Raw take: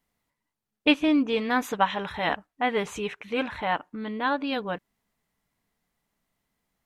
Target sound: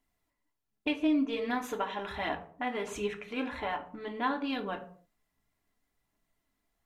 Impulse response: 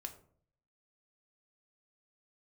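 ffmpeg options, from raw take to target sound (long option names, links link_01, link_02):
-filter_complex "[0:a]acompressor=threshold=-27dB:ratio=4,aphaser=in_gain=1:out_gain=1:delay=4.2:decay=0.36:speed=1.3:type=triangular[link_01];[1:a]atrim=start_sample=2205,afade=type=out:start_time=0.36:duration=0.01,atrim=end_sample=16317[link_02];[link_01][link_02]afir=irnorm=-1:irlink=0"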